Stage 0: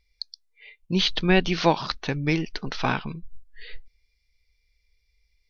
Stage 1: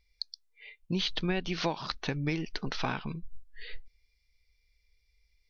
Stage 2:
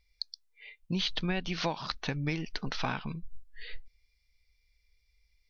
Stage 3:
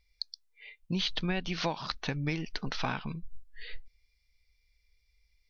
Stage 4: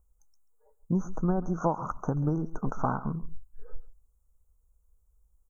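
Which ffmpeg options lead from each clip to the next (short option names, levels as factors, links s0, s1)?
-af "acompressor=threshold=0.0501:ratio=4,volume=0.794"
-af "equalizer=f=370:w=2.3:g=-4.5"
-af anull
-af "asuperstop=centerf=3100:order=20:qfactor=0.6,aecho=1:1:136:0.133,volume=1.88"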